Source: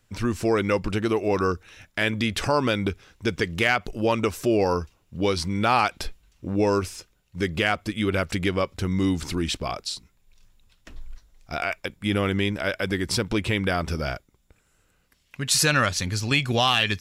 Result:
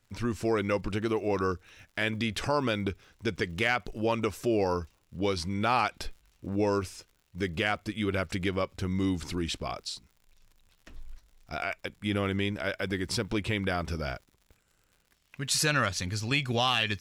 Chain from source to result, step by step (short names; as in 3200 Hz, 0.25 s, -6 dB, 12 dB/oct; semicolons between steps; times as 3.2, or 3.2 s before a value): high shelf 9200 Hz -3.5 dB; crackle 96/s -44 dBFS; gain -5.5 dB